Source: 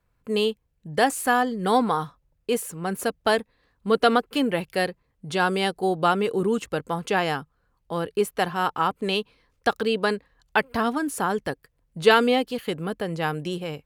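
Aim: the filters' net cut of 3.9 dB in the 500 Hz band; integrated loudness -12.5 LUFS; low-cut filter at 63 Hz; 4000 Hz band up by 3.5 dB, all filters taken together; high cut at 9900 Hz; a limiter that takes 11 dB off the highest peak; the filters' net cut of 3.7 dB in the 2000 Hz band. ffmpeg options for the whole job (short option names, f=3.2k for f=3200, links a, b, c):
-af "highpass=63,lowpass=9.9k,equalizer=f=500:t=o:g=-4.5,equalizer=f=2k:t=o:g=-6.5,equalizer=f=4k:t=o:g=7.5,volume=16.5dB,alimiter=limit=-0.5dB:level=0:latency=1"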